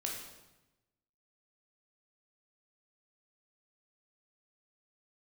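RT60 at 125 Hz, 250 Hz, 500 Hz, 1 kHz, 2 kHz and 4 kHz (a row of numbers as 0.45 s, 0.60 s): 1.4 s, 1.2 s, 1.0 s, 1.0 s, 0.90 s, 0.85 s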